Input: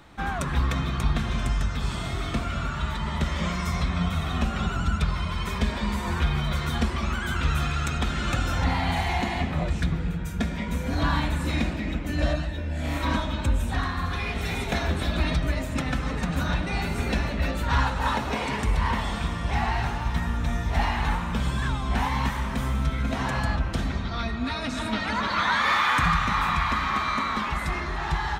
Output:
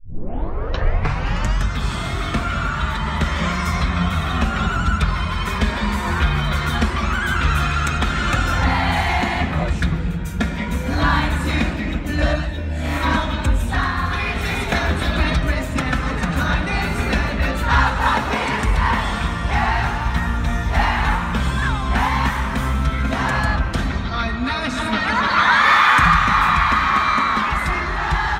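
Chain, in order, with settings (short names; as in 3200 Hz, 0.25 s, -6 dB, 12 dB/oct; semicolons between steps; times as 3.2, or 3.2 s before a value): tape start at the beginning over 1.67 s; dynamic EQ 1500 Hz, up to +5 dB, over -40 dBFS, Q 1.1; gain +5.5 dB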